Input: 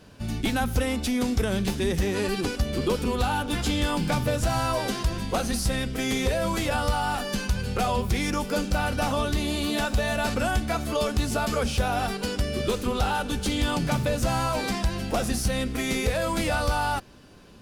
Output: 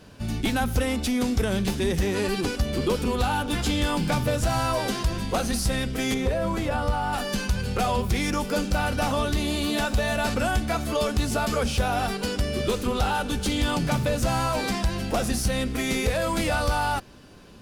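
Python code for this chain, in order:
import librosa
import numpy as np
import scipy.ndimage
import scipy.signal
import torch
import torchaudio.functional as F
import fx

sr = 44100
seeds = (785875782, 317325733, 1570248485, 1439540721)

p1 = fx.high_shelf(x, sr, hz=2200.0, db=-10.5, at=(6.14, 7.13))
p2 = np.clip(p1, -10.0 ** (-30.5 / 20.0), 10.0 ** (-30.5 / 20.0))
y = p1 + (p2 * librosa.db_to_amplitude(-12.0))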